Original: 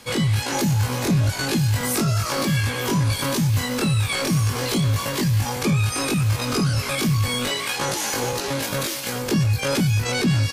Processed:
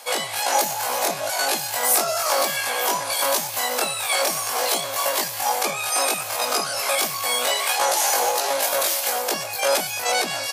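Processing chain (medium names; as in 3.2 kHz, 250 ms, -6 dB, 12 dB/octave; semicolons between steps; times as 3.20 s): resonant high-pass 680 Hz, resonance Q 3.9; treble shelf 7.9 kHz +11.5 dB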